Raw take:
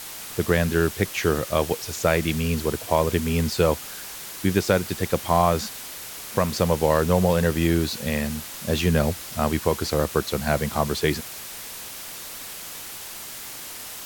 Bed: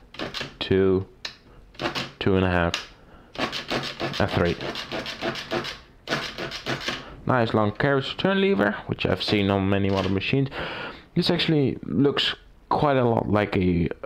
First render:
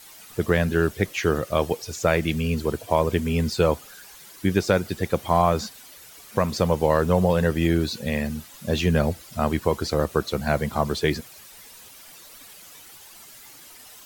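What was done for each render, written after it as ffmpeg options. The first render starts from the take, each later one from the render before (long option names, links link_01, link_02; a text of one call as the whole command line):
ffmpeg -i in.wav -af "afftdn=noise_reduction=12:noise_floor=-37" out.wav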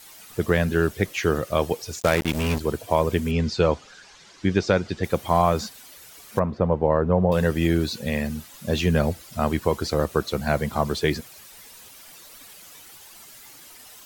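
ffmpeg -i in.wav -filter_complex "[0:a]asplit=3[link_01][link_02][link_03];[link_01]afade=type=out:start_time=1.99:duration=0.02[link_04];[link_02]acrusher=bits=3:mix=0:aa=0.5,afade=type=in:start_time=1.99:duration=0.02,afade=type=out:start_time=2.59:duration=0.02[link_05];[link_03]afade=type=in:start_time=2.59:duration=0.02[link_06];[link_04][link_05][link_06]amix=inputs=3:normalize=0,asettb=1/sr,asplit=3[link_07][link_08][link_09];[link_07]atrim=end=3.314[link_10];[link_08]atrim=start=3.31:end=5.04,asetpts=PTS-STARTPTS,afade=type=in:duration=0.004:curve=qsin,afade=type=out:start_time=1.726:duration=0.004:curve=qsin,lowpass=frequency=6400:width=0.5412,lowpass=frequency=6400:width=1.3066[link_11];[link_09]atrim=start=5.036[link_12];[link_10][link_11]acrossfade=duration=0.004:curve1=hsin:curve2=qsin[link_13];[link_13][link_12]acrossfade=duration=0.004:curve1=qsin:curve2=hsin,asettb=1/sr,asplit=3[link_14][link_15][link_16];[link_14]atrim=end=6.394[link_17];[link_15]atrim=start=6.39:end=7.32,asetpts=PTS-STARTPTS,afade=type=in:duration=0.004:curve=qsin,afade=type=out:start_time=0.926:duration=0.004:curve=qsin,lowpass=1200[link_18];[link_16]atrim=start=7.316[link_19];[link_17][link_18]acrossfade=duration=0.004:curve1=hsin:curve2=qsin[link_20];[link_20][link_19]acrossfade=duration=0.004:curve1=qsin:curve2=hsin" out.wav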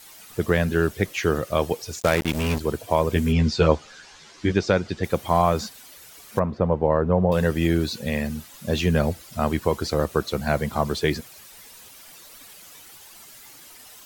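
ffmpeg -i in.wav -filter_complex "[0:a]asettb=1/sr,asplit=3[link_01][link_02][link_03];[link_01]atrim=end=3.144[link_04];[link_02]atrim=start=3.14:end=4.52,asetpts=PTS-STARTPTS,afade=type=in:duration=0.004:curve=qsin,afade=type=out:start_time=1.376:duration=0.004:curve=qsin,asplit=2[link_05][link_06];[link_06]adelay=13,volume=-2.5dB[link_07];[link_05][link_07]amix=inputs=2:normalize=0,atrim=end_sample=60858[link_08];[link_03]atrim=start=4.516[link_09];[link_04][link_08]acrossfade=duration=0.004:curve1=hsin:curve2=qsin[link_10];[link_10][link_09]acrossfade=duration=0.004:curve1=qsin:curve2=hsin" out.wav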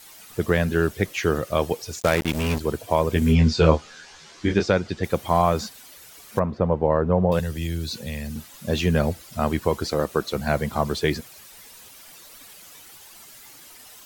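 ffmpeg -i in.wav -filter_complex "[0:a]asettb=1/sr,asplit=3[link_01][link_02][link_03];[link_01]atrim=end=3.194[link_04];[link_02]atrim=start=3.19:end=4.67,asetpts=PTS-STARTPTS,afade=type=in:duration=0.004:curve=qsin,afade=type=out:start_time=1.476:duration=0.004:curve=qsin,asplit=2[link_05][link_06];[link_06]adelay=25,volume=-5.5dB[link_07];[link_05][link_07]amix=inputs=2:normalize=0,atrim=end_sample=65268[link_08];[link_03]atrim=start=4.666[link_09];[link_04][link_08]acrossfade=duration=0.004:curve1=hsin:curve2=qsin[link_10];[link_10][link_09]acrossfade=duration=0.004:curve1=qsin:curve2=hsin,asettb=1/sr,asplit=3[link_11][link_12][link_13];[link_11]atrim=end=7.394[link_14];[link_12]atrim=start=7.39:end=8.36,asetpts=PTS-STARTPTS,afade=type=in:duration=0.004:curve=qsin,afade=type=out:start_time=0.966:duration=0.004:curve=qsin,acrossover=split=140|3000[link_15][link_16][link_17];[link_16]acompressor=threshold=-34dB:ratio=5:attack=3.2:release=140:knee=2.83:detection=peak[link_18];[link_15][link_18][link_17]amix=inputs=3:normalize=0[link_19];[link_13]atrim=start=8.356[link_20];[link_14][link_19]acrossfade=duration=0.004:curve1=hsin:curve2=qsin[link_21];[link_21][link_20]acrossfade=duration=0.004:curve1=qsin:curve2=hsin,asettb=1/sr,asplit=3[link_22][link_23][link_24];[link_22]atrim=end=9.844[link_25];[link_23]atrim=start=9.84:end=10.36,asetpts=PTS-STARTPTS,afade=type=in:duration=0.004:curve=qsin,afade=type=out:start_time=0.516:duration=0.004:curve=qsin,equalizer=frequency=88:width=1.5:gain=-9[link_26];[link_24]atrim=start=10.356[link_27];[link_25][link_26]acrossfade=duration=0.004:curve1=hsin:curve2=qsin[link_28];[link_28][link_27]acrossfade=duration=0.004:curve1=qsin:curve2=hsin" out.wav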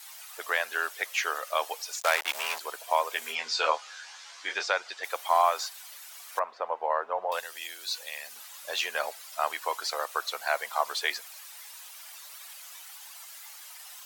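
ffmpeg -i in.wav -af "highpass=frequency=740:width=0.5412,highpass=frequency=740:width=1.3066" out.wav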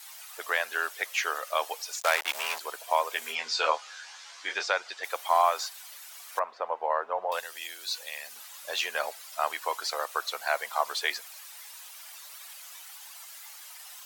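ffmpeg -i in.wav -af anull out.wav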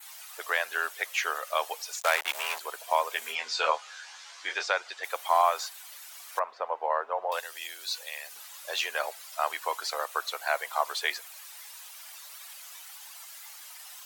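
ffmpeg -i in.wav -af "adynamicequalizer=threshold=0.00355:dfrequency=5100:dqfactor=2.3:tfrequency=5100:tqfactor=2.3:attack=5:release=100:ratio=0.375:range=2:mode=cutabove:tftype=bell,highpass=320" out.wav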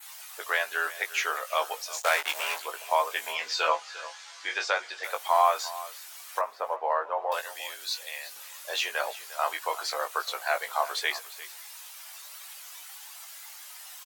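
ffmpeg -i in.wav -filter_complex "[0:a]asplit=2[link_01][link_02];[link_02]adelay=19,volume=-6dB[link_03];[link_01][link_03]amix=inputs=2:normalize=0,aecho=1:1:351:0.15" out.wav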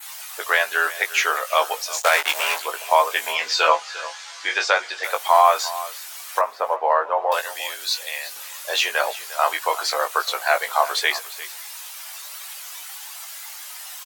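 ffmpeg -i in.wav -af "volume=8.5dB,alimiter=limit=-3dB:level=0:latency=1" out.wav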